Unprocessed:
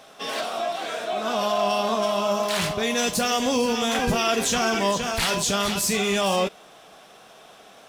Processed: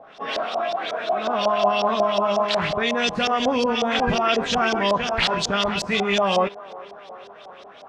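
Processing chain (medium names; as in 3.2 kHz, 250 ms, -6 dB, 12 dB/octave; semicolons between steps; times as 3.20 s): feedback echo behind a band-pass 393 ms, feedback 67%, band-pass 710 Hz, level -18 dB; LFO low-pass saw up 5.5 Hz 620–5300 Hz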